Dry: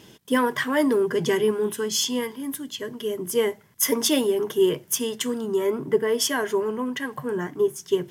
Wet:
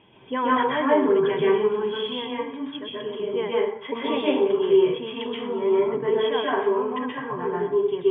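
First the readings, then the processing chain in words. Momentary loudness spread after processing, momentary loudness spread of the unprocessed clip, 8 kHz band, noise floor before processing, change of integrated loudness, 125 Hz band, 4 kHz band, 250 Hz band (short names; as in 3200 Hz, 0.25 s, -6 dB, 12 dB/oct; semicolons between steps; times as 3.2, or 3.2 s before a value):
11 LU, 9 LU, under -40 dB, -53 dBFS, +0.5 dB, -2.5 dB, -3.5 dB, -0.5 dB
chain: rippled Chebyshev low-pass 3400 Hz, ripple 9 dB; plate-style reverb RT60 0.61 s, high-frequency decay 0.65×, pre-delay 0.115 s, DRR -6 dB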